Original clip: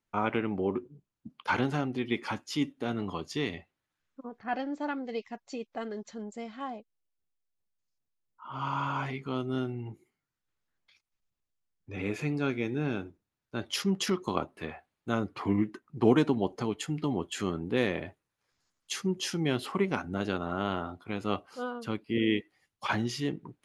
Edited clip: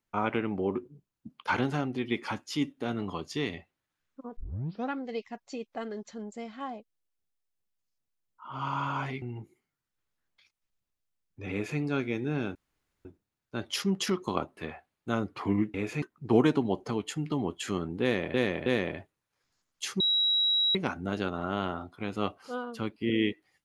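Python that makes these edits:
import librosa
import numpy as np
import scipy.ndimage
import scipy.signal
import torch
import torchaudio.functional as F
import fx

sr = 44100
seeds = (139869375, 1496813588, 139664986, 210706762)

y = fx.edit(x, sr, fx.tape_start(start_s=4.37, length_s=0.55),
    fx.cut(start_s=9.22, length_s=0.5),
    fx.duplicate(start_s=12.01, length_s=0.28, to_s=15.74),
    fx.insert_room_tone(at_s=13.05, length_s=0.5),
    fx.repeat(start_s=17.74, length_s=0.32, count=3),
    fx.bleep(start_s=19.08, length_s=0.75, hz=3870.0, db=-22.5), tone=tone)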